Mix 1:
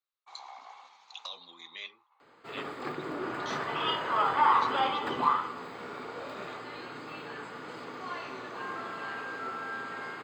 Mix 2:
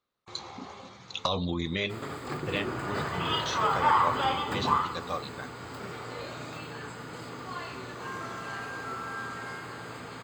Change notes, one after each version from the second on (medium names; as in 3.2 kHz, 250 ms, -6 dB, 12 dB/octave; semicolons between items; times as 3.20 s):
speech: remove differentiator; second sound: entry -0.55 s; master: remove three-band isolator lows -17 dB, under 200 Hz, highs -12 dB, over 4.4 kHz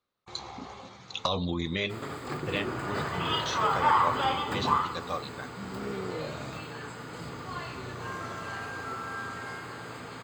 first sound: remove high-pass 710 Hz 12 dB/octave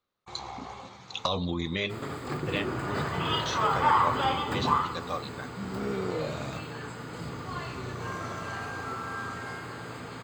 first sound +4.0 dB; second sound: add bass shelf 320 Hz +4 dB